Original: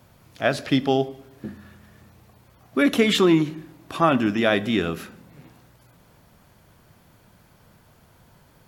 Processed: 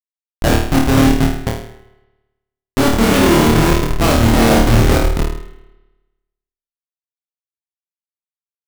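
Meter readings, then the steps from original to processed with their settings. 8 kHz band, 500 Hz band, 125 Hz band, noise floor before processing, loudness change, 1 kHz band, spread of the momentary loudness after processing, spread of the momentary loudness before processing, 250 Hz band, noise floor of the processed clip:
+15.5 dB, +6.5 dB, +15.5 dB, −56 dBFS, +7.5 dB, +8.5 dB, 13 LU, 21 LU, +8.0 dB, below −85 dBFS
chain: feedback delay that plays each chunk backwards 249 ms, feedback 46%, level −4 dB
low-pass filter 3,500 Hz 24 dB per octave
in parallel at 0 dB: brickwall limiter −14 dBFS, peak gain reduction 11 dB
on the sum: mains-hum notches 50/100/150/200/250/300/350/400/450 Hz
comparator with hysteresis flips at −13.5 dBFS
on a send: flutter between parallel walls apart 4.5 metres, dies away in 0.57 s
on the sum: spring reverb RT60 1.1 s, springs 55 ms, chirp 45 ms, DRR 13 dB
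level +6.5 dB

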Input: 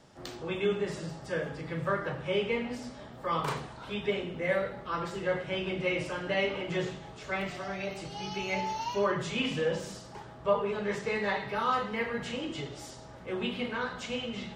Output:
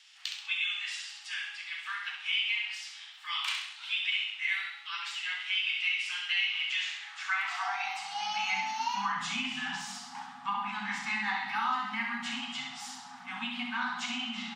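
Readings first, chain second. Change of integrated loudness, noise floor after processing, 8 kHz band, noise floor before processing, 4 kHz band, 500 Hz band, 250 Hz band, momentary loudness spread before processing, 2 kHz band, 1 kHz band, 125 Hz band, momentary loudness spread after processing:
+0.5 dB, −49 dBFS, +4.0 dB, −48 dBFS, +7.5 dB, below −30 dB, −8.5 dB, 9 LU, +4.5 dB, 0.0 dB, −18.0 dB, 9 LU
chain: high-pass filter sweep 2,700 Hz → 260 Hz, 0:06.76–0:08.65
brick-wall band-stop 260–710 Hz
downward compressor, threshold −32 dBFS, peak gain reduction 9 dB
meter weighting curve A
on a send: repeating echo 66 ms, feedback 41%, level −6 dB
on the sum: level +3.5 dB

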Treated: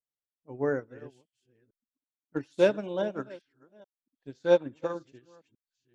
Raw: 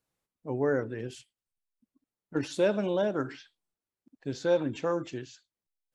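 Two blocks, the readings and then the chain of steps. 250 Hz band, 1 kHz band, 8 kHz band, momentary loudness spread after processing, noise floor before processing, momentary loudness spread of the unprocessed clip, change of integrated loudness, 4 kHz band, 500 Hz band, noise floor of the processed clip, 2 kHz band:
−2.5 dB, −1.5 dB, can't be measured, 23 LU, below −85 dBFS, 14 LU, +1.0 dB, −2.0 dB, +1.0 dB, below −85 dBFS, −0.5 dB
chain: delay that plays each chunk backwards 427 ms, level −9.5 dB
expander for the loud parts 2.5 to 1, over −39 dBFS
level +5.5 dB

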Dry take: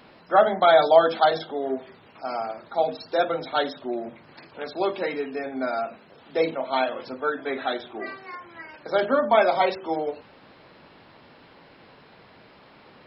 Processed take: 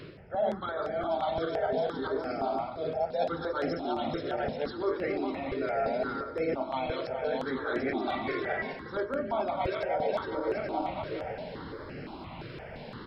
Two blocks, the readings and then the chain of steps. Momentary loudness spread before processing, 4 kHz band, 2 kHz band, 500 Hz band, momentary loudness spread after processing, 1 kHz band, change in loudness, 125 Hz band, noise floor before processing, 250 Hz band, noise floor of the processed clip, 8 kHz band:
18 LU, −9.5 dB, −6.5 dB, −7.0 dB, 10 LU, −8.5 dB, −8.0 dB, +3.5 dB, −52 dBFS, −1.5 dB, −44 dBFS, can't be measured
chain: feedback delay that plays each chunk backwards 208 ms, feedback 66%, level −4 dB
spectral tilt −1.5 dB per octave
reversed playback
downward compressor 12 to 1, threshold −32 dBFS, peak gain reduction 23.5 dB
reversed playback
noise in a band 49–390 Hz −56 dBFS
on a send: single-tap delay 188 ms −14.5 dB
on the sum: step-sequenced phaser 5.8 Hz 220–3,600 Hz
level +7.5 dB

